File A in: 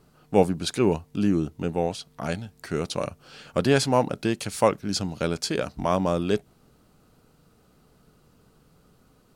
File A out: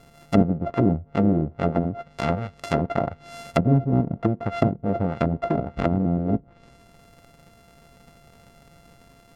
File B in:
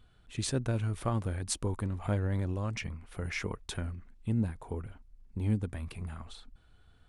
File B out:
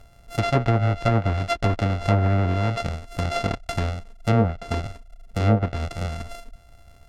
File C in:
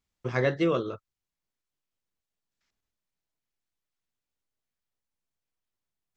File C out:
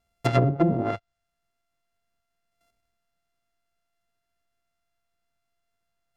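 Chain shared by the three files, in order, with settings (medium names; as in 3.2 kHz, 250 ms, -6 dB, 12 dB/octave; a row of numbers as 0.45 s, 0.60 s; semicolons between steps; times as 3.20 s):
sorted samples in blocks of 64 samples; low-pass that closes with the level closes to 300 Hz, closed at -21 dBFS; normalise loudness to -24 LUFS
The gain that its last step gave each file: +6.5 dB, +11.0 dB, +9.0 dB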